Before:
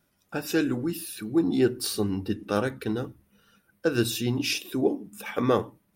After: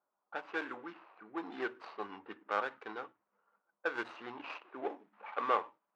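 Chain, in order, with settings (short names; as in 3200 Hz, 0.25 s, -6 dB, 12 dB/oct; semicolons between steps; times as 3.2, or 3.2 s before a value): median filter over 25 samples; ladder band-pass 1400 Hz, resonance 25%; low-pass opened by the level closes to 1200 Hz, open at -47 dBFS; gain +11.5 dB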